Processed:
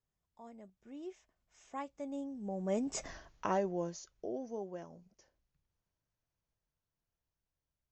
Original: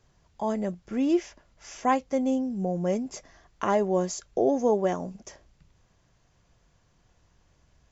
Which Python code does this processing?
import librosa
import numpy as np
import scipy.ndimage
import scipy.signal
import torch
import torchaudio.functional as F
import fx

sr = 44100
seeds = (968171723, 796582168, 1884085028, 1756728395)

y = fx.doppler_pass(x, sr, speed_mps=21, closest_m=1.4, pass_at_s=3.09)
y = F.gain(torch.from_numpy(y), 8.0).numpy()